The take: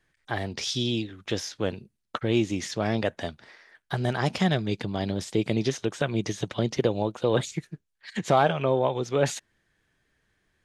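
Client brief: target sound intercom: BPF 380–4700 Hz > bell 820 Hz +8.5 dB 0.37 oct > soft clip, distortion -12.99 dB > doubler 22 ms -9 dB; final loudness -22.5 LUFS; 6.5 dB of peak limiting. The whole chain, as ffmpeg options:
-filter_complex "[0:a]alimiter=limit=-15.5dB:level=0:latency=1,highpass=380,lowpass=4.7k,equalizer=f=820:t=o:w=0.37:g=8.5,asoftclip=threshold=-21.5dB,asplit=2[a][b];[b]adelay=22,volume=-9dB[c];[a][c]amix=inputs=2:normalize=0,volume=10.5dB"

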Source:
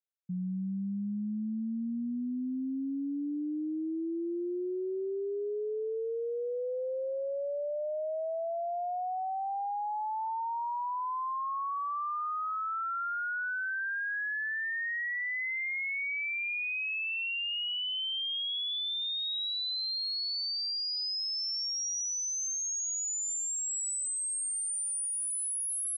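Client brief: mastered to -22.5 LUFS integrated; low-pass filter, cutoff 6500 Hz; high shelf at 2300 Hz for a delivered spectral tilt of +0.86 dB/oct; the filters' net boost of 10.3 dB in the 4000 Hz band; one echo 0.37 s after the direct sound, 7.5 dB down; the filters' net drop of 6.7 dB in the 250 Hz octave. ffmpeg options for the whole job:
-af "lowpass=6.5k,equalizer=f=250:t=o:g=-9,highshelf=f=2.3k:g=6,equalizer=f=4k:t=o:g=8,aecho=1:1:370:0.422,volume=2dB"

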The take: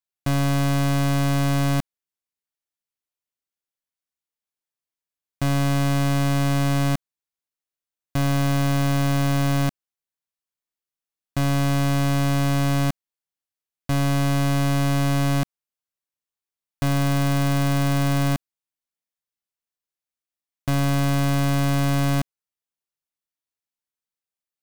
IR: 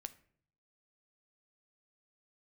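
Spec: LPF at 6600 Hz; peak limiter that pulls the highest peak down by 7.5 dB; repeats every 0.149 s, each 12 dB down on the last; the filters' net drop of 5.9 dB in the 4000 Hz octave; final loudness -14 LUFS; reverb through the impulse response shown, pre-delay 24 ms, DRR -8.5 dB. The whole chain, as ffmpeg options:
-filter_complex "[0:a]lowpass=6.6k,equalizer=f=4k:t=o:g=-7.5,alimiter=level_in=3dB:limit=-24dB:level=0:latency=1,volume=-3dB,aecho=1:1:149|298|447:0.251|0.0628|0.0157,asplit=2[a][b];[1:a]atrim=start_sample=2205,adelay=24[c];[b][c]afir=irnorm=-1:irlink=0,volume=13dB[d];[a][d]amix=inputs=2:normalize=0,volume=6.5dB"

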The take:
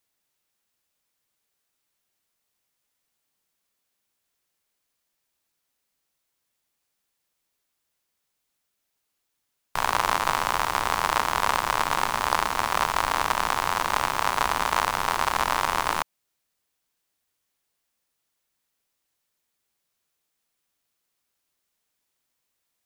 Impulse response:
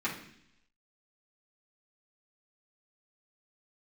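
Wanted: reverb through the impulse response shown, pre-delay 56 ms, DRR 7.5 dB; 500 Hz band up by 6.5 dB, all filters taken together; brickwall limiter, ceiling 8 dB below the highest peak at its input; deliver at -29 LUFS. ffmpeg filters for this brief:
-filter_complex "[0:a]equalizer=f=500:t=o:g=8.5,alimiter=limit=-11dB:level=0:latency=1,asplit=2[a][b];[1:a]atrim=start_sample=2205,adelay=56[c];[b][c]afir=irnorm=-1:irlink=0,volume=-14.5dB[d];[a][d]amix=inputs=2:normalize=0,volume=-3dB"

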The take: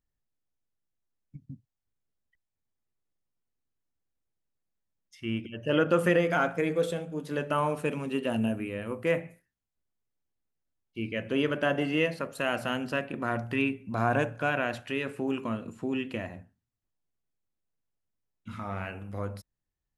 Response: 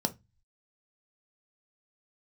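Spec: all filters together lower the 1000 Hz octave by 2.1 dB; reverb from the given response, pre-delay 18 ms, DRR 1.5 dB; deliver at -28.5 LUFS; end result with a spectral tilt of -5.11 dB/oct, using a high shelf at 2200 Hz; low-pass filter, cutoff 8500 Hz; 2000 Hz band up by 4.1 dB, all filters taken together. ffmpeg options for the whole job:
-filter_complex "[0:a]lowpass=8.5k,equalizer=f=1k:t=o:g=-6.5,equalizer=f=2k:t=o:g=5,highshelf=f=2.2k:g=5,asplit=2[a][b];[1:a]atrim=start_sample=2205,adelay=18[c];[b][c]afir=irnorm=-1:irlink=0,volume=-7dB[d];[a][d]amix=inputs=2:normalize=0,volume=-4.5dB"

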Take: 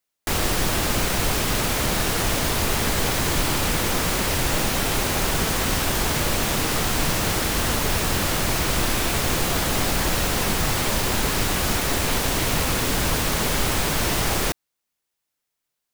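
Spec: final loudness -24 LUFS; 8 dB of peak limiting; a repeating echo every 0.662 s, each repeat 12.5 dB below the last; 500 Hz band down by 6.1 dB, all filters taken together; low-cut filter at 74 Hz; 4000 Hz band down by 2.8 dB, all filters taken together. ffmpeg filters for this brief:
-af "highpass=74,equalizer=f=500:t=o:g=-8,equalizer=f=4k:t=o:g=-3.5,alimiter=limit=-17.5dB:level=0:latency=1,aecho=1:1:662|1324|1986:0.237|0.0569|0.0137,volume=1.5dB"

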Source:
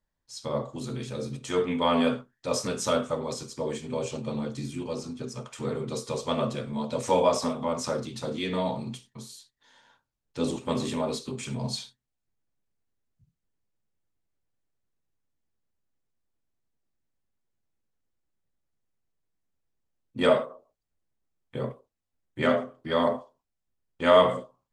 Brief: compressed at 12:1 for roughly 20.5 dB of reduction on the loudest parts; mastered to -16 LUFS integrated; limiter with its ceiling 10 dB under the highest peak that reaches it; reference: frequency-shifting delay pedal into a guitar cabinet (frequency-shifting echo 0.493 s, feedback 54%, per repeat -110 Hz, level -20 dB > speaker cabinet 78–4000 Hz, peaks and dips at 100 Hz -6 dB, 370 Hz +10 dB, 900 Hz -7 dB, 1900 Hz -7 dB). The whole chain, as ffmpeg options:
-filter_complex "[0:a]acompressor=threshold=-34dB:ratio=12,alimiter=level_in=8.5dB:limit=-24dB:level=0:latency=1,volume=-8.5dB,asplit=5[a][b][c][d][e];[b]adelay=493,afreqshift=-110,volume=-20dB[f];[c]adelay=986,afreqshift=-220,volume=-25.4dB[g];[d]adelay=1479,afreqshift=-330,volume=-30.7dB[h];[e]adelay=1972,afreqshift=-440,volume=-36.1dB[i];[a][f][g][h][i]amix=inputs=5:normalize=0,highpass=78,equalizer=f=100:t=q:w=4:g=-6,equalizer=f=370:t=q:w=4:g=10,equalizer=f=900:t=q:w=4:g=-7,equalizer=f=1.9k:t=q:w=4:g=-7,lowpass=f=4k:w=0.5412,lowpass=f=4k:w=1.3066,volume=25.5dB"

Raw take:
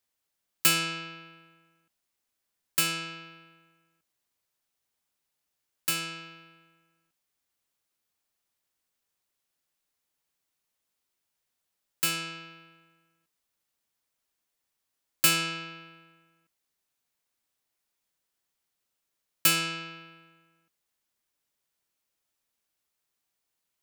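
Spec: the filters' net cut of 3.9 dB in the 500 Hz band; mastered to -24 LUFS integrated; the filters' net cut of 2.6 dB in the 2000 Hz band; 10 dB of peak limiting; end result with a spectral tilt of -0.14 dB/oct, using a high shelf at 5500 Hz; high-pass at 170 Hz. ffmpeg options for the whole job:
-af "highpass=170,equalizer=f=500:t=o:g=-5,equalizer=f=2k:t=o:g=-5,highshelf=f=5.5k:g=7.5,volume=3dB,alimiter=limit=-8.5dB:level=0:latency=1"

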